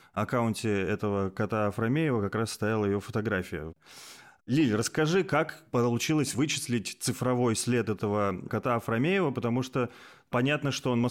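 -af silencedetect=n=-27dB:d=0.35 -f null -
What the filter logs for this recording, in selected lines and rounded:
silence_start: 3.62
silence_end: 4.50 | silence_duration: 0.88
silence_start: 9.86
silence_end: 10.33 | silence_duration: 0.48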